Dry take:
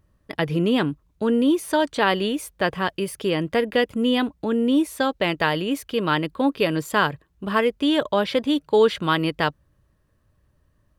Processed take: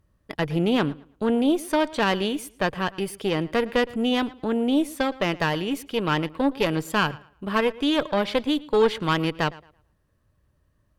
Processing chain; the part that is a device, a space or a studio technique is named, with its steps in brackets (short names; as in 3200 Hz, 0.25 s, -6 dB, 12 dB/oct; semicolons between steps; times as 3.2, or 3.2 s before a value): rockabilly slapback (tube stage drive 12 dB, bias 0.75; tape echo 0.113 s, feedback 28%, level -19 dB, low-pass 4700 Hz); gain +2 dB